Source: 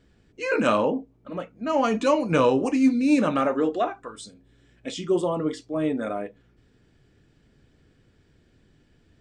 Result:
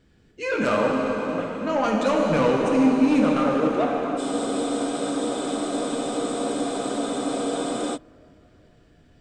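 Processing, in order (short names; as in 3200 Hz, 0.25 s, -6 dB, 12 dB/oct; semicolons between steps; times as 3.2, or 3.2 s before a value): soft clip -17 dBFS, distortion -14 dB; plate-style reverb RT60 4.5 s, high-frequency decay 0.85×, DRR -1 dB; spectral freeze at 4.2, 3.75 s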